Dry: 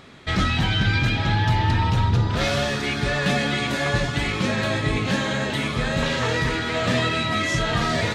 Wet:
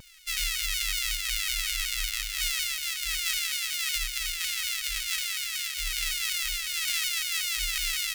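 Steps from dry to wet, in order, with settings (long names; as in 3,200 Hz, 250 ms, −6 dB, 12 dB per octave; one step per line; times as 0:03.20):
samples sorted by size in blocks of 64 samples
inverse Chebyshev band-stop filter 100–730 Hz, stop band 60 dB
pitch modulation by a square or saw wave saw down 5.4 Hz, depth 160 cents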